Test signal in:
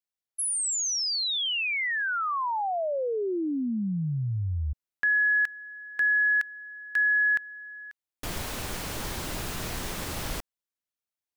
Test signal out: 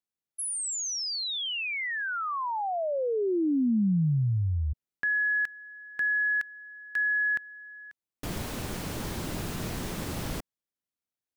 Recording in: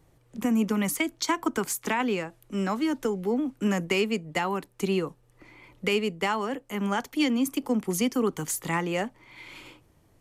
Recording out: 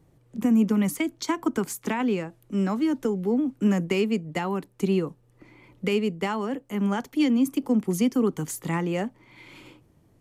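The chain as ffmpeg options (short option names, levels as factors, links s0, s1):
-af "equalizer=f=190:w=0.45:g=8.5,volume=0.631"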